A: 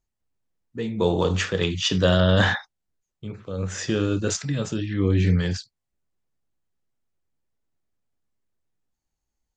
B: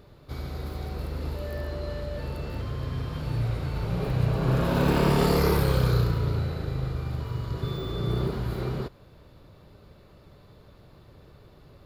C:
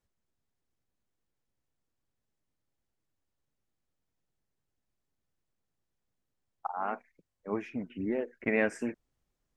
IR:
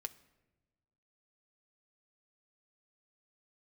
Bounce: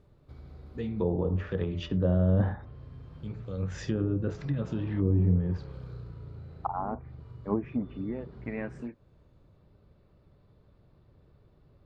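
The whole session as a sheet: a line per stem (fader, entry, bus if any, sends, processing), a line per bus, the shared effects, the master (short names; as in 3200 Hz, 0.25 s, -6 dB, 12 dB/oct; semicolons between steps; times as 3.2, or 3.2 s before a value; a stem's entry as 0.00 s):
-9.5 dB, 0.00 s, no send, de-hum 84.11 Hz, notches 15
-13.5 dB, 0.00 s, no send, LPF 3000 Hz 6 dB/oct; compressor 2:1, threshold -40 dBFS, peak gain reduction 12 dB
7.69 s -1 dB -> 8.28 s -13 dB, 0.00 s, no send, fifteen-band EQ 100 Hz +7 dB, 250 Hz +4 dB, 1000 Hz +6 dB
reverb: off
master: treble ducked by the level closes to 700 Hz, closed at -27.5 dBFS; low shelf 360 Hz +6.5 dB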